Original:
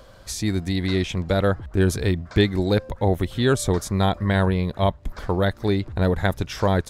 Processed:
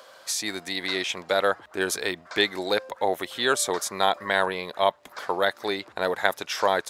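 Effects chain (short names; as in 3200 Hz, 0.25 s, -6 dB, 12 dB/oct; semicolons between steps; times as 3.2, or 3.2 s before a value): HPF 640 Hz 12 dB/oct; gain +3.5 dB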